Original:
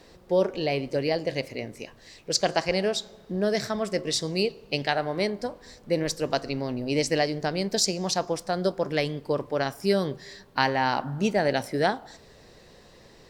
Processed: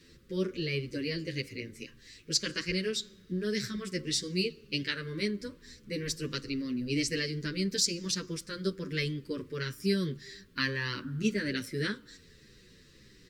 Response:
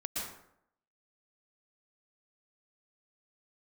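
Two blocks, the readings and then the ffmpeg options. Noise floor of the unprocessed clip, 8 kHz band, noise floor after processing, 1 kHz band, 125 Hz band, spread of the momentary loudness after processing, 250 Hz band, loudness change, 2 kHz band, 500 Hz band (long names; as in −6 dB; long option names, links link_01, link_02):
−53 dBFS, −3.0 dB, −58 dBFS, −20.0 dB, −3.0 dB, 10 LU, −3.5 dB, −6.0 dB, −4.0 dB, −11.0 dB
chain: -filter_complex "[0:a]asuperstop=centerf=750:order=4:qfactor=0.69,asplit=2[link_01][link_02];[link_02]adelay=8.6,afreqshift=-1.8[link_03];[link_01][link_03]amix=inputs=2:normalize=1"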